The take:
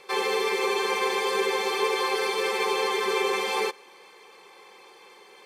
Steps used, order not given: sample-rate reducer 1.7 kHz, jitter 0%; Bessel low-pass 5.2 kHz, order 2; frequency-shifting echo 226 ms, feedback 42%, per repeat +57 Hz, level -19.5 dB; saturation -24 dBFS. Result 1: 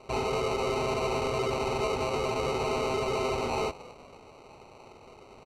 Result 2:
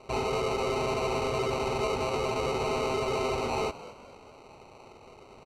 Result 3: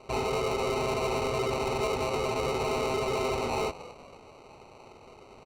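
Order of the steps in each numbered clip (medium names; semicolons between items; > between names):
saturation > frequency-shifting echo > sample-rate reducer > Bessel low-pass; sample-rate reducer > frequency-shifting echo > saturation > Bessel low-pass; frequency-shifting echo > sample-rate reducer > Bessel low-pass > saturation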